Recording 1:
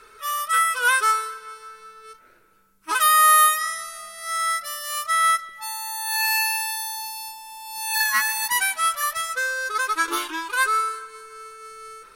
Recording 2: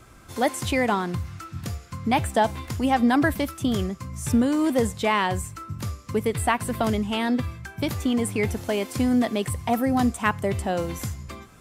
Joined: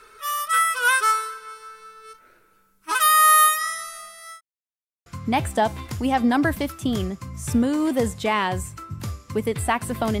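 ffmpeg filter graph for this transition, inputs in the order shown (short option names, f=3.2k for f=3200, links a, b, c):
-filter_complex "[0:a]apad=whole_dur=10.2,atrim=end=10.2,asplit=2[a][b];[a]atrim=end=4.41,asetpts=PTS-STARTPTS,afade=t=out:st=3.83:d=0.58:c=qsin[c];[b]atrim=start=4.41:end=5.06,asetpts=PTS-STARTPTS,volume=0[d];[1:a]atrim=start=1.85:end=6.99,asetpts=PTS-STARTPTS,afade=t=in:d=0.004:c=hsin[e];[c][d][e]concat=n=3:v=0:a=1"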